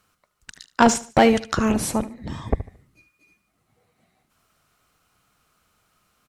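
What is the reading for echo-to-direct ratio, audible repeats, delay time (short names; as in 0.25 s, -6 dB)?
-16.5 dB, 2, 74 ms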